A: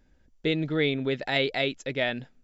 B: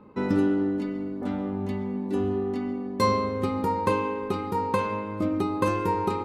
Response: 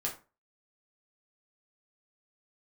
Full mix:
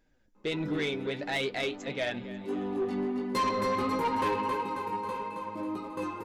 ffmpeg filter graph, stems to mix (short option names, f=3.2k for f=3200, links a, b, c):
-filter_complex "[0:a]bass=f=250:g=-6,treble=f=4k:g=-1,volume=-6.5dB,asplit=3[a][b][c];[b]volume=-17.5dB[d];[c]volume=-17.5dB[e];[1:a]flanger=delay=16:depth=4.2:speed=1.3,equalizer=f=88:w=0.63:g=-10.5,adelay=350,afade=t=in:st=2.3:d=0.49:silence=0.266073,afade=t=out:st=4.16:d=0.47:silence=0.316228,asplit=2[f][g];[g]volume=-5.5dB[h];[2:a]atrim=start_sample=2205[i];[d][i]afir=irnorm=-1:irlink=0[j];[e][h]amix=inputs=2:normalize=0,aecho=0:1:271|542|813|1084|1355|1626|1897|2168:1|0.55|0.303|0.166|0.0915|0.0503|0.0277|0.0152[k];[a][f][j][k]amix=inputs=4:normalize=0,flanger=delay=6.1:depth=3.8:regen=45:speed=1.5:shape=sinusoidal,acontrast=71,asoftclip=type=tanh:threshold=-23.5dB"